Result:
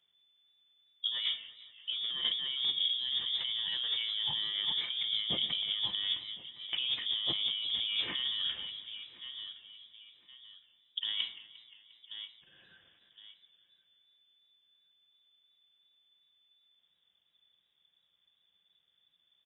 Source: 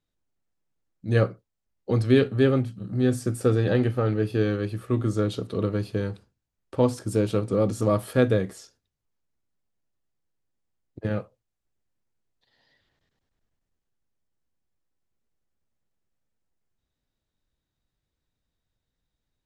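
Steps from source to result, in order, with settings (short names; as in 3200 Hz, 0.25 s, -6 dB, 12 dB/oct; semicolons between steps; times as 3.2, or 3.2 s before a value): limiter -19.5 dBFS, peak gain reduction 11.5 dB; inverted band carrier 3500 Hz; HPF 60 Hz; feedback echo 1.065 s, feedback 30%, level -22 dB; shoebox room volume 2100 m³, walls furnished, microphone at 0.83 m; negative-ratio compressor -34 dBFS, ratio -1; warbling echo 0.176 s, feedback 72%, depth 150 cents, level -19 dB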